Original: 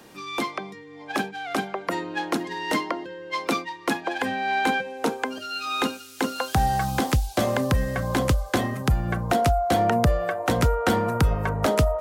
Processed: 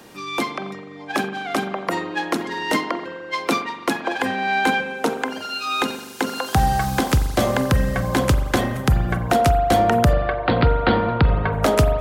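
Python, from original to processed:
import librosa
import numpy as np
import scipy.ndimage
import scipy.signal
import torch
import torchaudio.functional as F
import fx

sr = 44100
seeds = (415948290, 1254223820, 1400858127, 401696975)

y = fx.steep_lowpass(x, sr, hz=4600.0, slope=96, at=(10.13, 11.53))
y = fx.rev_spring(y, sr, rt60_s=1.3, pass_ms=(41,), chirp_ms=45, drr_db=9.5)
y = fx.end_taper(y, sr, db_per_s=140.0)
y = y * 10.0 ** (4.0 / 20.0)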